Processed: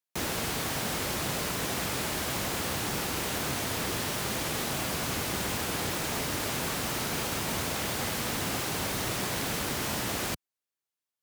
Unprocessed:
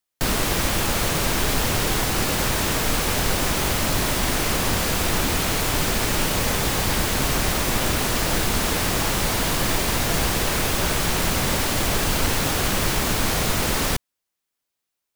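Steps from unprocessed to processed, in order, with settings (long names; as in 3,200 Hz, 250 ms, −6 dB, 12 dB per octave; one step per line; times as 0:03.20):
high-pass filter 66 Hz 12 dB per octave
wrong playback speed 33 rpm record played at 45 rpm
level −8.5 dB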